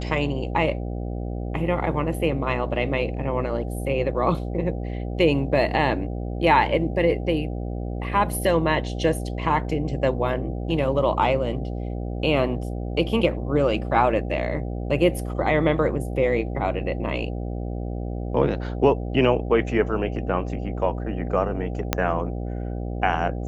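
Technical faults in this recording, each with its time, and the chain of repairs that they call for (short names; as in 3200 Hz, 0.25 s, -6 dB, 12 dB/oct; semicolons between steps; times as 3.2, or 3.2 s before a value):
buzz 60 Hz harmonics 13 -29 dBFS
21.93 pop -4 dBFS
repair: de-click; de-hum 60 Hz, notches 13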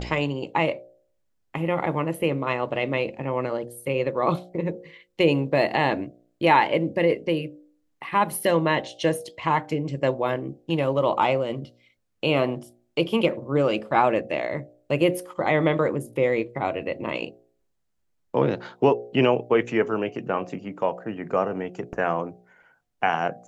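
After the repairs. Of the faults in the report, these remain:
21.93 pop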